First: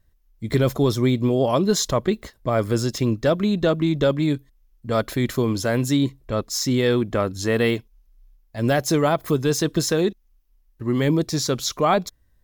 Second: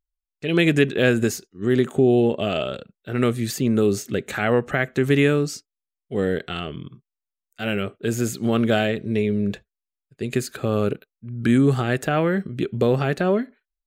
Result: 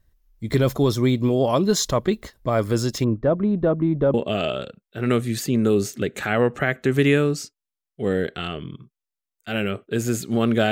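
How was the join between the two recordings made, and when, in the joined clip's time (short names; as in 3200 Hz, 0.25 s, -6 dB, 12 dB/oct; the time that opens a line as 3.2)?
first
3.04–4.14 LPF 1100 Hz 12 dB/oct
4.14 switch to second from 2.26 s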